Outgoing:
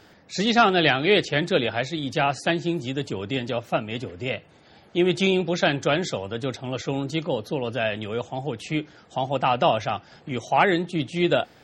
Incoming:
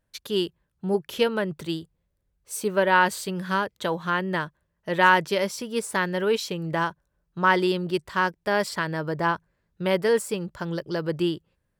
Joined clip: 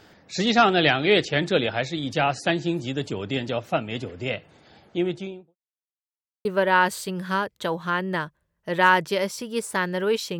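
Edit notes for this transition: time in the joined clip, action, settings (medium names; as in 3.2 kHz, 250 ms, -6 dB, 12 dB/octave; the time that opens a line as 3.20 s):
outgoing
4.67–5.56 s: studio fade out
5.56–6.45 s: mute
6.45 s: go over to incoming from 2.65 s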